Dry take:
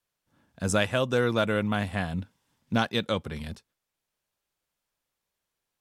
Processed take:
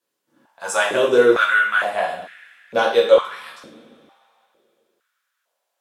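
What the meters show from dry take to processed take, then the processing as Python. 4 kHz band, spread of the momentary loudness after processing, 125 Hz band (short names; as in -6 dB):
+5.5 dB, 18 LU, under -10 dB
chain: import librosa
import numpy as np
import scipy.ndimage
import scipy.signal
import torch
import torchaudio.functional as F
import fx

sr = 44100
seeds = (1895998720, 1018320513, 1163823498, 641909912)

y = fx.rev_double_slope(x, sr, seeds[0], early_s=0.52, late_s=2.8, knee_db=-21, drr_db=-4.0)
y = fx.filter_held_highpass(y, sr, hz=2.2, low_hz=290.0, high_hz=1900.0)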